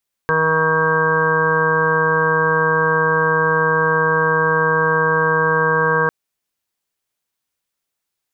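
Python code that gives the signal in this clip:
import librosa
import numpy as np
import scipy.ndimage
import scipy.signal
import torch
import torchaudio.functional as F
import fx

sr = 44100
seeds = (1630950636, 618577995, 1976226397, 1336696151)

y = fx.additive_steady(sr, length_s=5.8, hz=159.0, level_db=-23.5, upper_db=(-10.5, 5.0, -9.5, -14, 1, 3, -6.0, -14.0, 5.5))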